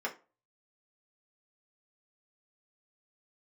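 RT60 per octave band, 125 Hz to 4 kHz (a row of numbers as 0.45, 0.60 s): 0.35, 0.30, 0.35, 0.30, 0.25, 0.20 s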